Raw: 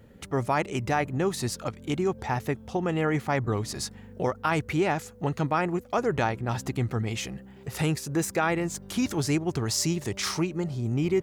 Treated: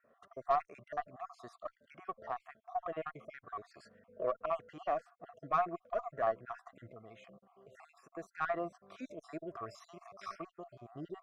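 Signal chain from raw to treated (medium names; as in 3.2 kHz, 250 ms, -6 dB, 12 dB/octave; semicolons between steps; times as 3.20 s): random holes in the spectrogram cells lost 49%; two resonant band-passes 870 Hz, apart 0.73 oct; 6.91–8.16 s: compression 3:1, threshold -55 dBFS, peak gain reduction 11 dB; Chebyshev shaper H 4 -25 dB, 7 -34 dB, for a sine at -19.5 dBFS; harmonic-percussive split percussive -8 dB; trim +7.5 dB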